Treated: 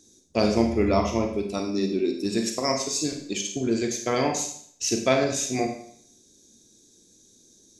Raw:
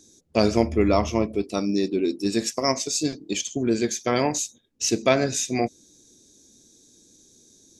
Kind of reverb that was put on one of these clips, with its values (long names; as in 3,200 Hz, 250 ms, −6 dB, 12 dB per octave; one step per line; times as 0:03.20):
four-comb reverb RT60 0.6 s, combs from 31 ms, DRR 3.5 dB
level −3 dB